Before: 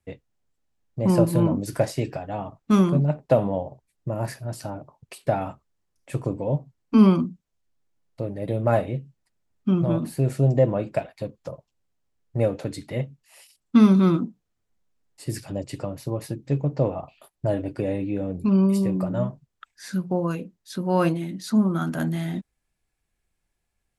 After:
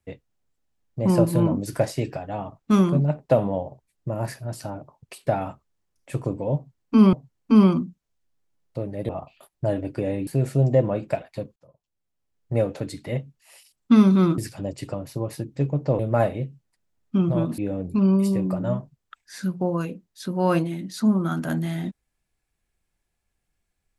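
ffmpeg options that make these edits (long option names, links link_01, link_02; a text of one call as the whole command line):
ffmpeg -i in.wav -filter_complex "[0:a]asplit=8[link_01][link_02][link_03][link_04][link_05][link_06][link_07][link_08];[link_01]atrim=end=7.132[link_09];[link_02]atrim=start=6.558:end=8.522[link_10];[link_03]atrim=start=16.898:end=18.082[link_11];[link_04]atrim=start=10.108:end=11.4,asetpts=PTS-STARTPTS,afade=type=out:start_time=1.288:duration=0.004:curve=hsin[link_12];[link_05]atrim=start=11.4:end=14.222,asetpts=PTS-STARTPTS,afade=type=in:duration=0.97[link_13];[link_06]atrim=start=15.288:end=16.902[link_14];[link_07]atrim=start=8.518:end=10.112[link_15];[link_08]atrim=start=18.078[link_16];[link_09][link_10]acrossfade=duration=0.004:curve1=hsin:curve2=hsin[link_17];[link_17][link_11]acrossfade=duration=0.004:curve1=hsin:curve2=hsin[link_18];[link_12][link_13]concat=n=2:v=0:a=1[link_19];[link_18][link_19]acrossfade=duration=0.004:curve1=hsin:curve2=hsin[link_20];[link_20][link_14]acrossfade=duration=0.004:curve1=hsin:curve2=hsin[link_21];[link_21][link_15]acrossfade=duration=0.004:curve1=hsin:curve2=hsin[link_22];[link_22][link_16]acrossfade=duration=0.004:curve1=hsin:curve2=hsin" out.wav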